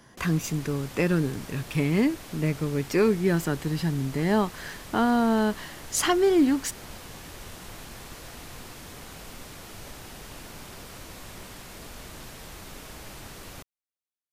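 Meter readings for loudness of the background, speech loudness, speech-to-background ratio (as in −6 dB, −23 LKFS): −42.5 LKFS, −25.5 LKFS, 17.0 dB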